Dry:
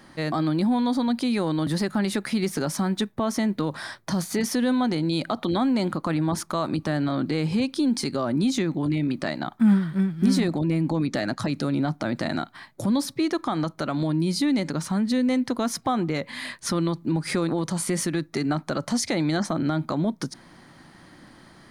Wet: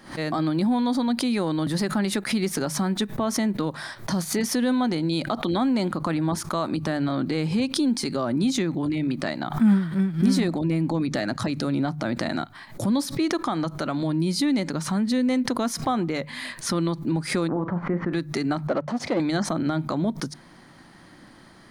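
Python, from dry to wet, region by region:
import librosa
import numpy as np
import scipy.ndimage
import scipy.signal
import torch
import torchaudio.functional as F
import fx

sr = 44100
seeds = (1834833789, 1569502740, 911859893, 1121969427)

y = fx.chain(x, sr, fx.lowpass(hz=1600.0, slope=24),
    fx.doubler(ms=40.0, db=-10), at=(17.48, 18.13))
y = fx.chain(y, sr, fx.leveller(passes=3),
    fx.bandpass_q(hz=540.0, q=0.8),
    fx.upward_expand(threshold_db=-34.0, expansion=2.5), at=(18.67, 19.2))
y = fx.hum_notches(y, sr, base_hz=50, count=3)
y = fx.pre_swell(y, sr, db_per_s=140.0)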